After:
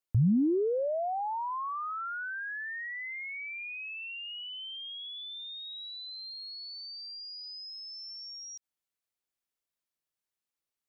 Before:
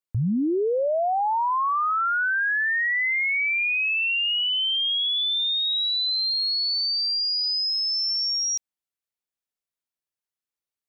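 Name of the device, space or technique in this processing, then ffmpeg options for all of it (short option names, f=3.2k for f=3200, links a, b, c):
de-esser from a sidechain: -filter_complex "[0:a]asplit=2[a][b];[b]highpass=f=4.8k:p=1,apad=whole_len=479952[c];[a][c]sidechaincompress=threshold=-47dB:ratio=6:attack=0.59:release=51"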